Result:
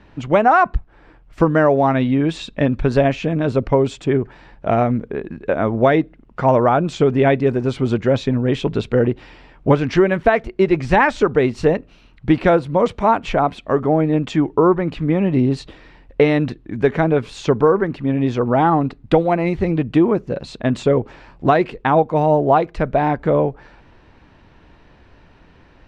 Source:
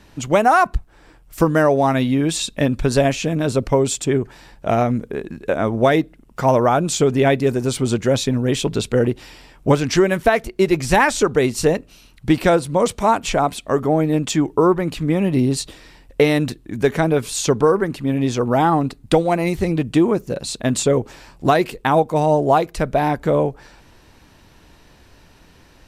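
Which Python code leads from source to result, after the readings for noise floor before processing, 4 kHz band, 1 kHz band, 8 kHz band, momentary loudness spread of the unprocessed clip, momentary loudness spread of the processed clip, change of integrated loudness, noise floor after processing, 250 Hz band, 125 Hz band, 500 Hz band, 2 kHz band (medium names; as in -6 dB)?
-50 dBFS, -6.0 dB, +1.0 dB, under -15 dB, 7 LU, 7 LU, +0.5 dB, -50 dBFS, +1.0 dB, +1.0 dB, +1.0 dB, 0.0 dB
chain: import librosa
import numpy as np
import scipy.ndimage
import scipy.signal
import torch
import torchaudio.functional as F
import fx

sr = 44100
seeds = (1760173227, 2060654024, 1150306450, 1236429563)

y = scipy.signal.sosfilt(scipy.signal.butter(2, 2600.0, 'lowpass', fs=sr, output='sos'), x)
y = y * 10.0 ** (1.0 / 20.0)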